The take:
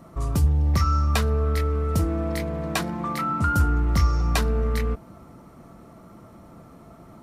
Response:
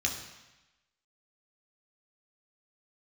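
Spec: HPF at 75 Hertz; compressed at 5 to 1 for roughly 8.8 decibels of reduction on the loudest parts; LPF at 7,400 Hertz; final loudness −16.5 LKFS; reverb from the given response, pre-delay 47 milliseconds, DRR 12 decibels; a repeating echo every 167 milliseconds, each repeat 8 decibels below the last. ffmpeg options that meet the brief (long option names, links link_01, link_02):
-filter_complex "[0:a]highpass=75,lowpass=7400,acompressor=threshold=-28dB:ratio=5,aecho=1:1:167|334|501|668|835:0.398|0.159|0.0637|0.0255|0.0102,asplit=2[link_01][link_02];[1:a]atrim=start_sample=2205,adelay=47[link_03];[link_02][link_03]afir=irnorm=-1:irlink=0,volume=-18.5dB[link_04];[link_01][link_04]amix=inputs=2:normalize=0,volume=15dB"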